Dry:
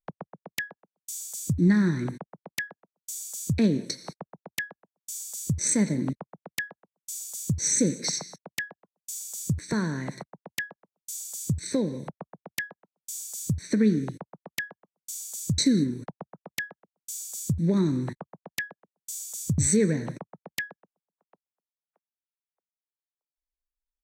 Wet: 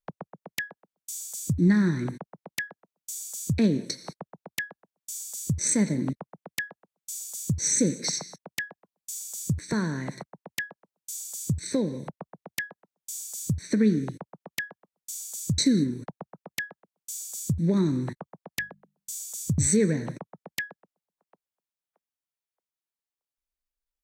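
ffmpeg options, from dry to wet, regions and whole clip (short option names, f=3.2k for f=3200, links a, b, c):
-filter_complex "[0:a]asettb=1/sr,asplit=3[a][b][c];[a]atrim=end=18.524[d];[b]atrim=start=18.52:end=19.21,asetpts=PTS-STARTPTS,afade=t=in:d=0.004:c=qsin,afade=t=out:st=0.686:d=0.004:c=qsin,lowshelf=f=250:g=9,bandreject=f=50:t=h:w=6,bandreject=f=100:t=h:w=6,bandreject=f=150:t=h:w=6,bandreject=f=200:t=h:w=6[e];[c]atrim=start=19.206[f];[d][e]acrossfade=d=0.004:c1=hsin:c2=qsin[g];[g][f]acrossfade=d=0.004:c1=qsin:c2=hsin"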